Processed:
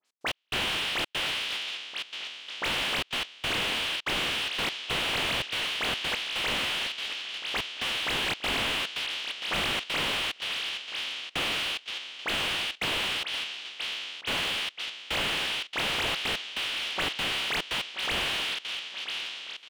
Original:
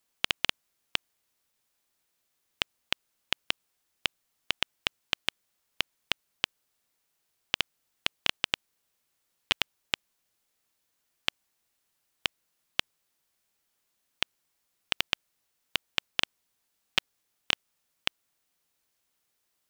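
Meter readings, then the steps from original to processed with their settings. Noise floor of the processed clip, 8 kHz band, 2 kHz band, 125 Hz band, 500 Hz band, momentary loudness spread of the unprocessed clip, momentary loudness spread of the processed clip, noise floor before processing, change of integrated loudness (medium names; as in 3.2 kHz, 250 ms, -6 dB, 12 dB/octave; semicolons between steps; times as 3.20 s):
-51 dBFS, +7.0 dB, +7.0 dB, +9.5 dB, +10.5 dB, 5 LU, 6 LU, -78 dBFS, +4.0 dB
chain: spectral sustain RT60 2.04 s; low-pass 6 kHz 12 dB/octave; treble shelf 2.8 kHz +9.5 dB; phase dispersion highs, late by 54 ms, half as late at 2.5 kHz; trance gate "x.x..xxxxx.xxx" 144 bpm -60 dB; high-pass 280 Hz 12 dB/octave; feedback delay 980 ms, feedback 47%, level -13.5 dB; slew-rate limiter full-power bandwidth 110 Hz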